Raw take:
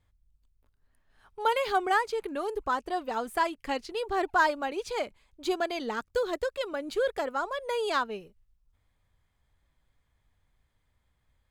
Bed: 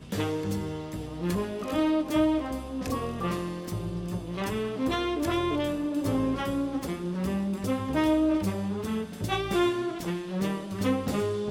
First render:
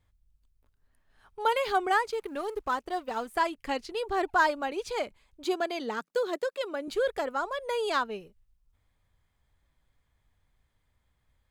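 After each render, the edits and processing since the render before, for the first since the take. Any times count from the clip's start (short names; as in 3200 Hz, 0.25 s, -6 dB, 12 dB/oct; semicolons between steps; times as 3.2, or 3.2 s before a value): 2.11–3.36 G.711 law mismatch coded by A; 5.44–6.88 elliptic high-pass 170 Hz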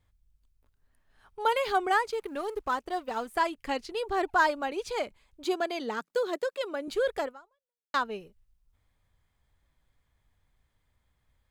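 7.25–7.94 fade out exponential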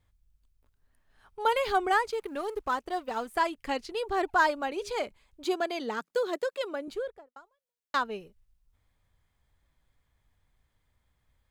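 1.45–2.09 low shelf 120 Hz +8.5 dB; 4.66–5.06 de-hum 204.2 Hz, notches 3; 6.65–7.36 studio fade out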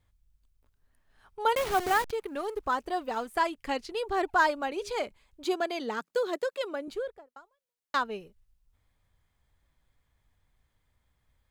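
1.55–2.11 level-crossing sampler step -29.5 dBFS; 2.63–3.15 G.711 law mismatch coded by mu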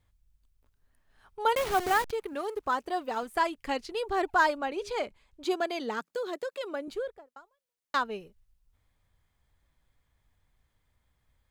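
2.33–3.23 HPF 110 Hz 6 dB/oct; 4.57–5.49 high shelf 6000 Hz -> 11000 Hz -7 dB; 6.13–6.74 compressor 2:1, threshold -33 dBFS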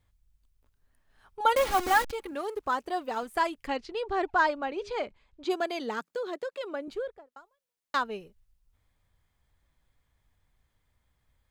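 1.4–2.31 comb 3.6 ms, depth 81%; 3.67–5.5 air absorption 92 m; 6.14–7.32 high shelf 7000 Hz -9.5 dB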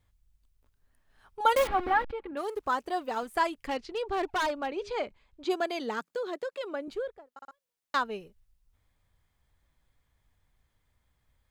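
1.67–2.37 air absorption 450 m; 3.62–4.76 hard clip -26 dBFS; 7.33 stutter in place 0.06 s, 3 plays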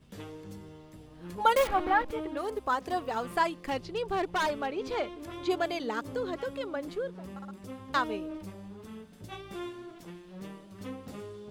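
add bed -14.5 dB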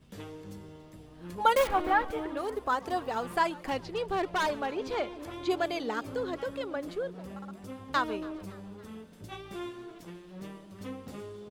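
frequency-shifting echo 0.281 s, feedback 52%, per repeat +97 Hz, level -23 dB; warbling echo 0.14 s, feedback 58%, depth 197 cents, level -23 dB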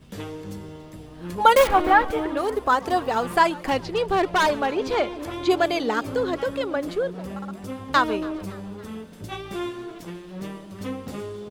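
gain +9 dB; limiter -3 dBFS, peak gain reduction 1 dB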